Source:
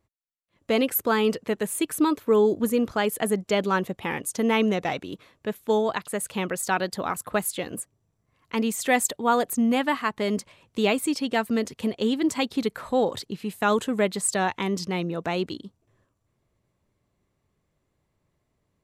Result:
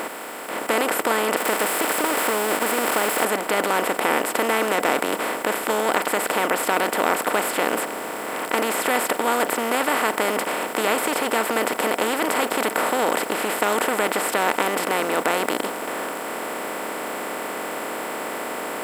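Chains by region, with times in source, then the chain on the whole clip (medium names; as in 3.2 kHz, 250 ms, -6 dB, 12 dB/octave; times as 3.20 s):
1.36–3.25 s: zero-crossing glitches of -17 dBFS + expander -25 dBFS + compression 3:1, threshold -24 dBFS
whole clip: spectral levelling over time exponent 0.2; tone controls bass -13 dB, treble -6 dB; trim -5 dB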